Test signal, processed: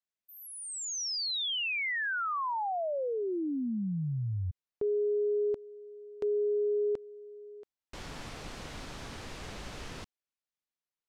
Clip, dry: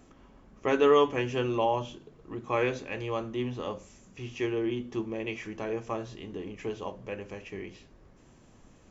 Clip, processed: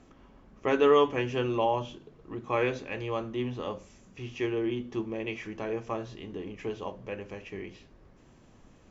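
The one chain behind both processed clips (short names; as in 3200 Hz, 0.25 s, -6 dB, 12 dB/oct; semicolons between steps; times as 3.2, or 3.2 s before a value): LPF 6100 Hz 12 dB/oct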